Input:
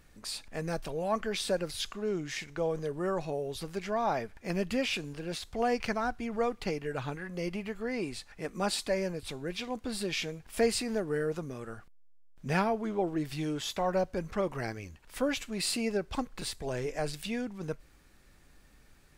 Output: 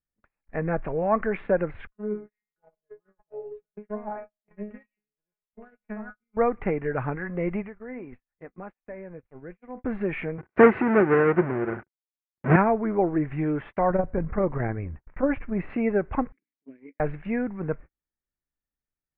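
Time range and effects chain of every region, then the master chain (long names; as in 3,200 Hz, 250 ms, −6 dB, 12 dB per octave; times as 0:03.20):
0:01.87–0:06.37: transient designer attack +1 dB, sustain −7 dB + tuned comb filter 210 Hz, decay 0.37 s, mix 100% + single-tap delay 108 ms −16.5 dB
0:07.62–0:09.84: downward compressor 10 to 1, threshold −36 dBFS + tuned comb filter 250 Hz, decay 0.38 s, mix 50%
0:10.38–0:12.56: each half-wave held at its own peak + high-pass filter 120 Hz + hollow resonant body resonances 360/1,500 Hz, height 10 dB, ringing for 85 ms
0:13.90–0:15.70: low-pass filter 1,700 Hz 6 dB per octave + low-shelf EQ 140 Hz +8 dB + saturating transformer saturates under 130 Hz
0:16.32–0:17.00: formant filter i + low-shelf EQ 130 Hz −8 dB + mains-hum notches 60/120/180/240/300 Hz
whole clip: Butterworth low-pass 2,200 Hz 48 dB per octave; noise gate −46 dBFS, range −42 dB; level +7.5 dB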